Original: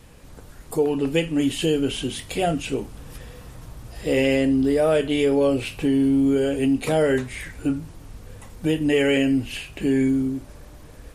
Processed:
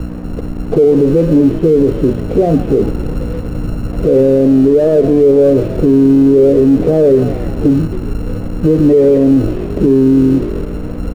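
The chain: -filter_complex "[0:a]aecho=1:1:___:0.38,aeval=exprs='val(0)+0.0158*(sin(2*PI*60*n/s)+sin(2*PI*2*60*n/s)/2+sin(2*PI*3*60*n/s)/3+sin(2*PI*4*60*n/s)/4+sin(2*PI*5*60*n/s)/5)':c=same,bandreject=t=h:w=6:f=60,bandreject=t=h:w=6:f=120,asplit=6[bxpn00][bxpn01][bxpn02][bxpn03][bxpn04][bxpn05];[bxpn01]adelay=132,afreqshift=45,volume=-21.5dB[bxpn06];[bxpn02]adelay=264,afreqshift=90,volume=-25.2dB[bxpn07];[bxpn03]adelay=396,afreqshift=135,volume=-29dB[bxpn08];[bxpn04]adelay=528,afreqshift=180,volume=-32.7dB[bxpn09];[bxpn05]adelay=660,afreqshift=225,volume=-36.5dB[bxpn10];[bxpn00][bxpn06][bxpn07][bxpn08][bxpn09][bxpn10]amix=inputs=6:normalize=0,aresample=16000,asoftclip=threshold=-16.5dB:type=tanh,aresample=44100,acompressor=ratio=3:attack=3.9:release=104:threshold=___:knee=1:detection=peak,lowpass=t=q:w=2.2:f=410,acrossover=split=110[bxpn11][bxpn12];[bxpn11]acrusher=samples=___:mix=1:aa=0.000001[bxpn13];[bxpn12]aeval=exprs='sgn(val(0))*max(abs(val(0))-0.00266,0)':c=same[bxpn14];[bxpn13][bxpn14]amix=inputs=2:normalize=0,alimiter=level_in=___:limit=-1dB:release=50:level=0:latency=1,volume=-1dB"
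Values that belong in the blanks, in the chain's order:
1.6, -29dB, 32, 20.5dB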